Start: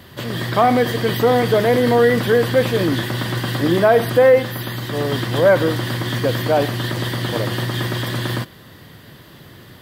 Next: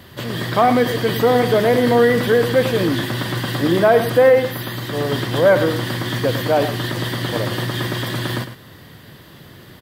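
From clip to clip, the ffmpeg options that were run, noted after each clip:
ffmpeg -i in.wav -af "aecho=1:1:105:0.266" out.wav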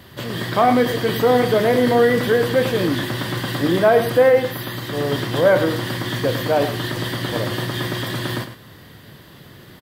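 ffmpeg -i in.wav -filter_complex "[0:a]asplit=2[link_01][link_02];[link_02]adelay=28,volume=-11dB[link_03];[link_01][link_03]amix=inputs=2:normalize=0,volume=-1.5dB" out.wav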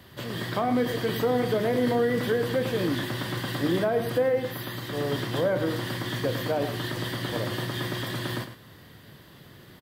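ffmpeg -i in.wav -filter_complex "[0:a]acrossover=split=400[link_01][link_02];[link_02]acompressor=threshold=-20dB:ratio=4[link_03];[link_01][link_03]amix=inputs=2:normalize=0,volume=-6.5dB" out.wav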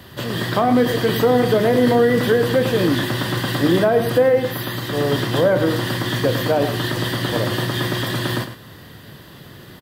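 ffmpeg -i in.wav -af "bandreject=frequency=2200:width=16,volume=9dB" out.wav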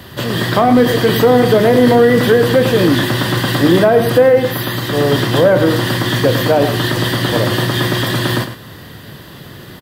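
ffmpeg -i in.wav -af "acontrast=22,volume=1.5dB" out.wav

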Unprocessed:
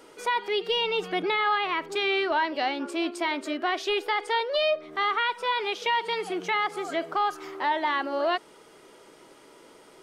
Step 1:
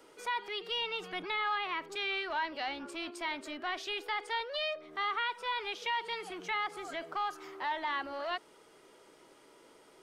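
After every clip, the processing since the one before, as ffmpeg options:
ffmpeg -i in.wav -filter_complex "[0:a]equalizer=frequency=180:width=1.5:gain=-2,acrossover=split=160|810|4700[link_01][link_02][link_03][link_04];[link_02]asoftclip=type=tanh:threshold=-36dB[link_05];[link_01][link_05][link_03][link_04]amix=inputs=4:normalize=0,volume=-7dB" out.wav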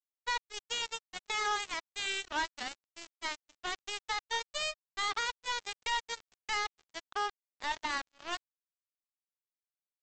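ffmpeg -i in.wav -af "bandreject=frequency=50:width_type=h:width=6,bandreject=frequency=100:width_type=h:width=6,bandreject=frequency=150:width_type=h:width=6,bandreject=frequency=200:width_type=h:width=6,aresample=16000,acrusher=bits=4:mix=0:aa=0.5,aresample=44100" out.wav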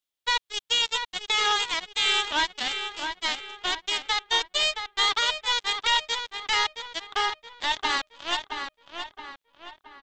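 ffmpeg -i in.wav -filter_complex "[0:a]equalizer=frequency=3400:width_type=o:width=0.62:gain=9,asplit=2[link_01][link_02];[link_02]adelay=671,lowpass=frequency=3300:poles=1,volume=-6dB,asplit=2[link_03][link_04];[link_04]adelay=671,lowpass=frequency=3300:poles=1,volume=0.46,asplit=2[link_05][link_06];[link_06]adelay=671,lowpass=frequency=3300:poles=1,volume=0.46,asplit=2[link_07][link_08];[link_08]adelay=671,lowpass=frequency=3300:poles=1,volume=0.46,asplit=2[link_09][link_10];[link_10]adelay=671,lowpass=frequency=3300:poles=1,volume=0.46,asplit=2[link_11][link_12];[link_12]adelay=671,lowpass=frequency=3300:poles=1,volume=0.46[link_13];[link_03][link_05][link_07][link_09][link_11][link_13]amix=inputs=6:normalize=0[link_14];[link_01][link_14]amix=inputs=2:normalize=0,volume=6.5dB" out.wav

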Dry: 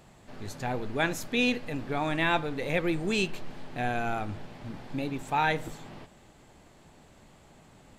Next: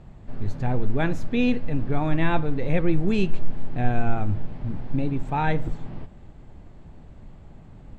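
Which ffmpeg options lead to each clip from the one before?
ffmpeg -i in.wav -af "aemphasis=mode=reproduction:type=riaa" out.wav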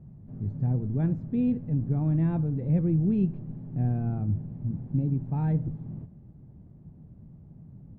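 ffmpeg -i in.wav -af "bandpass=frequency=150:width_type=q:width=1.6:csg=0,volume=3dB" out.wav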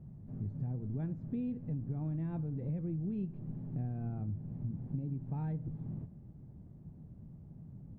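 ffmpeg -i in.wav -af "acompressor=threshold=-32dB:ratio=6,volume=-2.5dB" out.wav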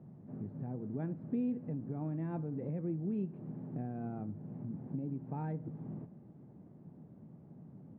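ffmpeg -i in.wav -af "highpass=240,lowpass=2200,volume=5.5dB" out.wav

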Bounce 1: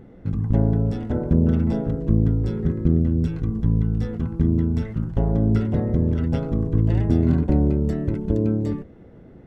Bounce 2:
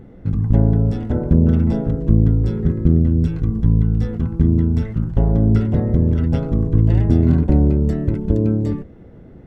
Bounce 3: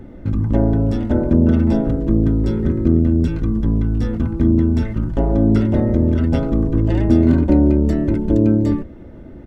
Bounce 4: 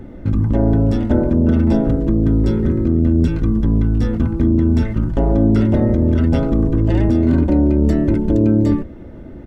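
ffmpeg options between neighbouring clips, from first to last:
ffmpeg -i in.wav -af "lowshelf=frequency=140:gain=5,volume=2dB" out.wav
ffmpeg -i in.wav -filter_complex "[0:a]aecho=1:1:3.3:0.46,acrossover=split=170[link_01][link_02];[link_01]asoftclip=type=tanh:threshold=-20dB[link_03];[link_03][link_02]amix=inputs=2:normalize=0,volume=4dB" out.wav
ffmpeg -i in.wav -af "alimiter=limit=-8.5dB:level=0:latency=1:release=22,volume=2.5dB" out.wav

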